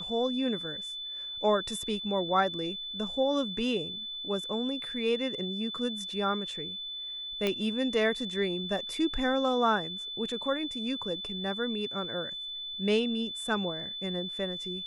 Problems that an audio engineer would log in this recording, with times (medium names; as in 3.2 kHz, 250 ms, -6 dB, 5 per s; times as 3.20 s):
whine 3.5 kHz -36 dBFS
7.47 s: pop -15 dBFS